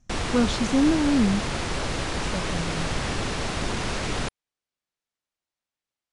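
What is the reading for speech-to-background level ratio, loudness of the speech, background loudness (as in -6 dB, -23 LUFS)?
3.5 dB, -25.0 LUFS, -28.5 LUFS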